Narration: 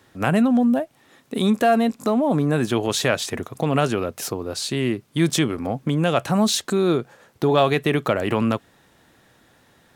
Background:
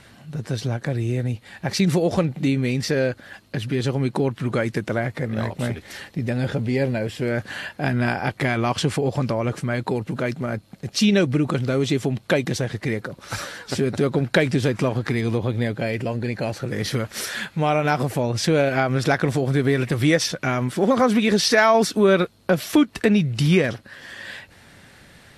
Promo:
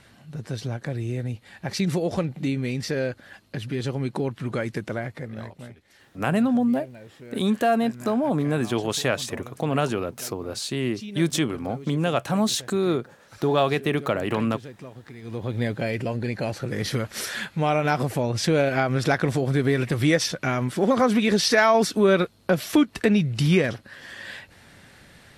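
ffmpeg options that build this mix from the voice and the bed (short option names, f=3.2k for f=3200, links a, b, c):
-filter_complex "[0:a]adelay=6000,volume=-3.5dB[a];[1:a]volume=12.5dB,afade=t=out:st=4.85:d=0.9:silence=0.188365,afade=t=in:st=15.21:d=0.43:silence=0.133352[b];[a][b]amix=inputs=2:normalize=0"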